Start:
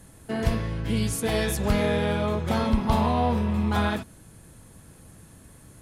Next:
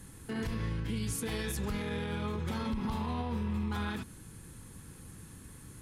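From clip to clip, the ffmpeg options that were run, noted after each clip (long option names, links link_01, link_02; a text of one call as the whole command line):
ffmpeg -i in.wav -af "equalizer=frequency=640:width_type=o:width=0.44:gain=-13,acompressor=threshold=-29dB:ratio=1.5,alimiter=level_in=2.5dB:limit=-24dB:level=0:latency=1:release=75,volume=-2.5dB" out.wav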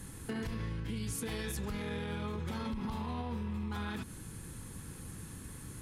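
ffmpeg -i in.wav -af "acompressor=threshold=-38dB:ratio=6,volume=3.5dB" out.wav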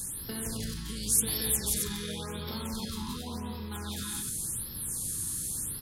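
ffmpeg -i in.wav -filter_complex "[0:a]aexciter=amount=3.6:drive=8.6:freq=3500,asplit=2[link_01][link_02];[link_02]aecho=0:1:174.9|268.2:0.708|0.562[link_03];[link_01][link_03]amix=inputs=2:normalize=0,afftfilt=real='re*(1-between(b*sr/1024,560*pow(8000/560,0.5+0.5*sin(2*PI*0.9*pts/sr))/1.41,560*pow(8000/560,0.5+0.5*sin(2*PI*0.9*pts/sr))*1.41))':imag='im*(1-between(b*sr/1024,560*pow(8000/560,0.5+0.5*sin(2*PI*0.9*pts/sr))/1.41,560*pow(8000/560,0.5+0.5*sin(2*PI*0.9*pts/sr))*1.41))':win_size=1024:overlap=0.75,volume=-1.5dB" out.wav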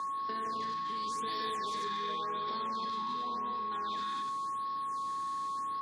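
ffmpeg -i in.wav -af "aexciter=amount=2.2:drive=5.2:freq=2600,aeval=exprs='val(0)+0.0316*sin(2*PI*1100*n/s)':channel_layout=same,highpass=280,equalizer=frequency=280:width_type=q:width=4:gain=4,equalizer=frequency=420:width_type=q:width=4:gain=5,equalizer=frequency=630:width_type=q:width=4:gain=4,equalizer=frequency=970:width_type=q:width=4:gain=4,equalizer=frequency=1800:width_type=q:width=4:gain=9,equalizer=frequency=2900:width_type=q:width=4:gain=-9,lowpass=frequency=4000:width=0.5412,lowpass=frequency=4000:width=1.3066,volume=-6dB" out.wav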